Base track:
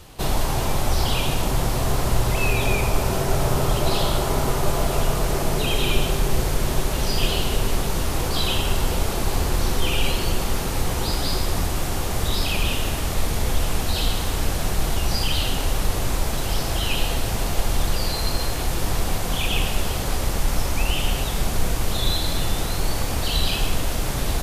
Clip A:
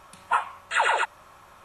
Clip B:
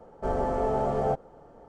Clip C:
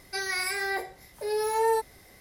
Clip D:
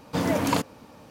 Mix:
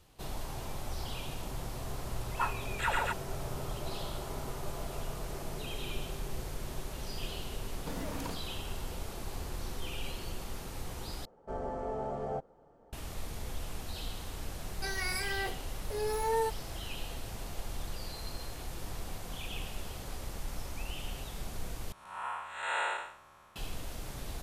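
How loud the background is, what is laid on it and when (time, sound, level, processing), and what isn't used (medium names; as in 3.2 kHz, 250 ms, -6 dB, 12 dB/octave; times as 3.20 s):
base track -17.5 dB
2.08 s: add A -9.5 dB
7.73 s: add D -9.5 dB + compression, threshold -27 dBFS
11.25 s: replace with B -10 dB
14.69 s: add C -6 dB
21.92 s: replace with A -5.5 dB + spectral blur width 237 ms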